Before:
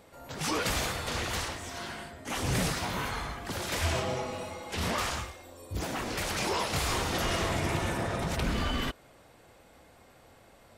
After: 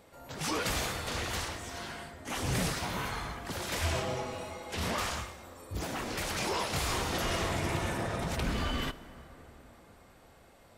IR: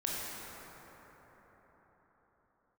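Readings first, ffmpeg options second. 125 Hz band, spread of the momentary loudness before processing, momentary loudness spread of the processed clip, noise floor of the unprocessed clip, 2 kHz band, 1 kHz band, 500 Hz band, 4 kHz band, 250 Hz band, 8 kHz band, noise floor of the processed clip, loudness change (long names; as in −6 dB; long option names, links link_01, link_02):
−2.0 dB, 9 LU, 11 LU, −58 dBFS, −2.0 dB, −2.0 dB, −2.0 dB, −2.0 dB, −2.0 dB, −2.0 dB, −58 dBFS, −2.0 dB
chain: -filter_complex "[0:a]asplit=2[link_01][link_02];[1:a]atrim=start_sample=2205,highshelf=frequency=7700:gain=7[link_03];[link_02][link_03]afir=irnorm=-1:irlink=0,volume=-19dB[link_04];[link_01][link_04]amix=inputs=2:normalize=0,volume=-3dB"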